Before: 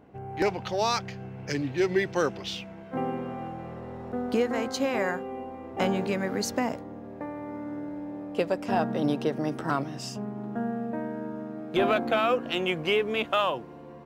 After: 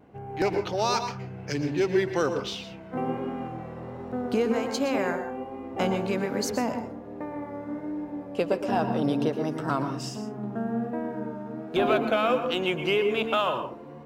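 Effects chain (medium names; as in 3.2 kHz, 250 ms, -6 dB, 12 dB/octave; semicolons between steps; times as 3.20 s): vibrato 1.3 Hz 43 cents; on a send at -7 dB: reverberation RT60 0.40 s, pre-delay 107 ms; on the sum: dynamic bell 1.9 kHz, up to -5 dB, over -52 dBFS, Q 6.3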